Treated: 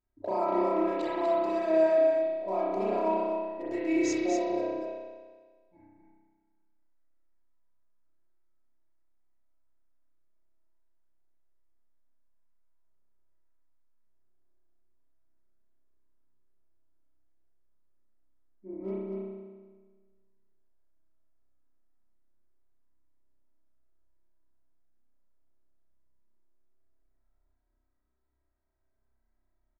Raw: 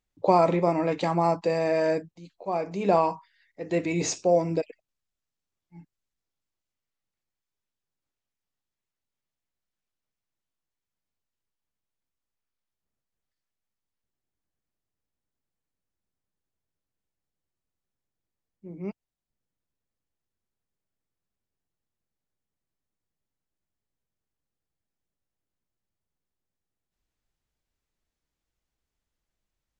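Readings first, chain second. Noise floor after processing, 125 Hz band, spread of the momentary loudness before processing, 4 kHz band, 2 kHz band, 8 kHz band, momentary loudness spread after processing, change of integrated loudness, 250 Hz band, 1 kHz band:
-75 dBFS, under -15 dB, 16 LU, -7.0 dB, -4.0 dB, -8.5 dB, 15 LU, -3.5 dB, -1.0 dB, -5.0 dB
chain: local Wiener filter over 15 samples; compression 6:1, threshold -31 dBFS, peak gain reduction 15 dB; comb 3.1 ms, depth 98%; delay 243 ms -5 dB; spring tank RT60 1.5 s, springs 31 ms, chirp 35 ms, DRR -7.5 dB; trim -6 dB

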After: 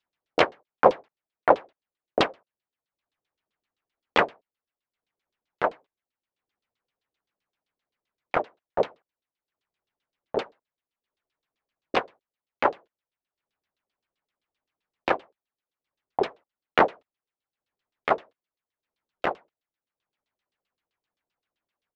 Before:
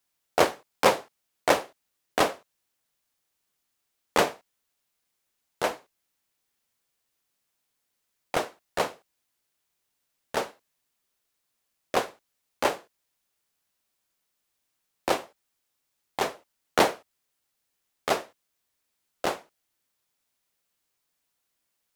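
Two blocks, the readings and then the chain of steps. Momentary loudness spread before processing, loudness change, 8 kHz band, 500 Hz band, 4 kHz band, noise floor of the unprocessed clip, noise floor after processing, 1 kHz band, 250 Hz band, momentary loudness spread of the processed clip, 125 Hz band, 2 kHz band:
15 LU, +1.5 dB, under -15 dB, +1.5 dB, -2.5 dB, -79 dBFS, under -85 dBFS, +2.0 dB, +0.5 dB, 10 LU, -0.5 dB, +1.5 dB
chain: resampled via 22.05 kHz; transient shaper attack +4 dB, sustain -7 dB; LFO low-pass saw down 7.7 Hz 340–4300 Hz; trim -3.5 dB

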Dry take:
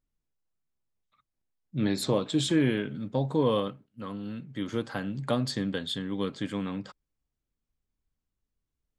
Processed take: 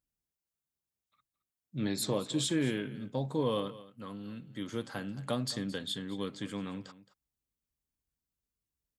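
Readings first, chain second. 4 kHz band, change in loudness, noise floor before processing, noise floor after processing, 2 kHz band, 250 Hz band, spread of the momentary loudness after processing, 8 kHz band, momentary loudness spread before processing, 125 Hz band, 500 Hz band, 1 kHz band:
-3.0 dB, -5.5 dB, under -85 dBFS, under -85 dBFS, -5.0 dB, -6.0 dB, 13 LU, +1.0 dB, 13 LU, -6.0 dB, -6.0 dB, -5.5 dB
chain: high-pass 42 Hz; treble shelf 5.9 kHz +10.5 dB; on a send: delay 219 ms -17 dB; on the sum: trim -6 dB

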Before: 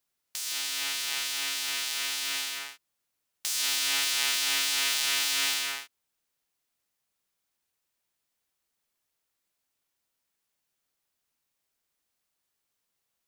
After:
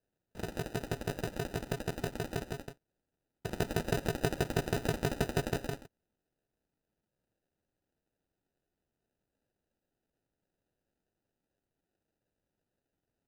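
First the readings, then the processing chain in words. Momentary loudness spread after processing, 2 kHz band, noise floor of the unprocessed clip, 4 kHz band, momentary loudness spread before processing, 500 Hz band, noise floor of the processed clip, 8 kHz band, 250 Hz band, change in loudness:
11 LU, -10.5 dB, -82 dBFS, -19.0 dB, 10 LU, +15.0 dB, under -85 dBFS, -18.5 dB, +16.0 dB, -9.0 dB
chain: sample-and-hold 40×; trim -5.5 dB

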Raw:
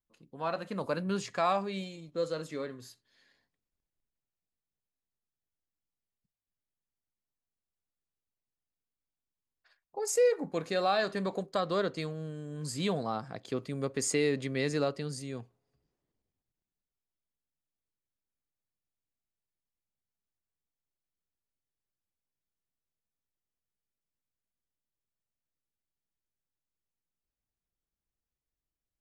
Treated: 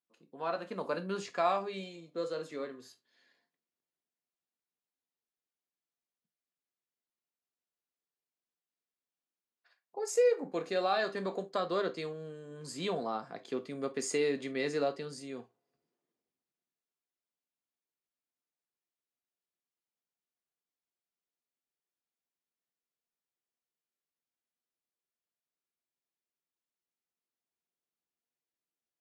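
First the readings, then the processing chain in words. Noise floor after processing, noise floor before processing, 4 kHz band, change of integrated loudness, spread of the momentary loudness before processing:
under -85 dBFS, under -85 dBFS, -3.0 dB, -2.0 dB, 12 LU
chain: Chebyshev high-pass 280 Hz, order 2; treble shelf 9.6 kHz -11.5 dB; gated-style reverb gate 90 ms falling, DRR 7 dB; trim -1.5 dB

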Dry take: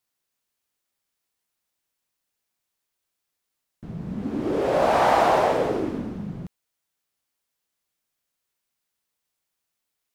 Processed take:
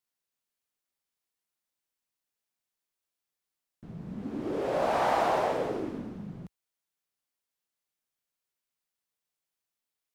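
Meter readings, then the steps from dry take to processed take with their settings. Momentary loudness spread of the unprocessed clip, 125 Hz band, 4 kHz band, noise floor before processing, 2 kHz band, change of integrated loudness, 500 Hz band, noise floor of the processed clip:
17 LU, -8.0 dB, -7.5 dB, -82 dBFS, -7.5 dB, -7.5 dB, -7.5 dB, under -85 dBFS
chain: peaking EQ 61 Hz -4 dB 1.1 oct; trim -7.5 dB

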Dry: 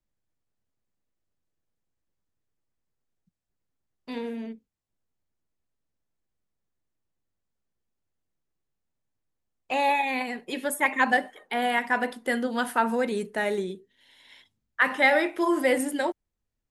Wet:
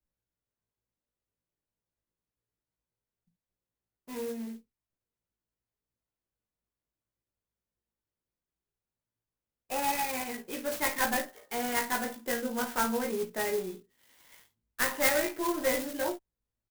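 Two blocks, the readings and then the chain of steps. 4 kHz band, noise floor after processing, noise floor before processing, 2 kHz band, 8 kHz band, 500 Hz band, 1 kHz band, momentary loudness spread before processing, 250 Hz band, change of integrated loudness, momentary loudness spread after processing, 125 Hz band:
-2.5 dB, under -85 dBFS, -82 dBFS, -8.0 dB, +4.5 dB, -5.0 dB, -7.0 dB, 15 LU, -6.5 dB, -5.0 dB, 13 LU, no reading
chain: single-diode clipper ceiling -19.5 dBFS; doubling 17 ms -3 dB; early reflections 19 ms -6 dB, 53 ms -10.5 dB; sampling jitter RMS 0.067 ms; trim -7 dB

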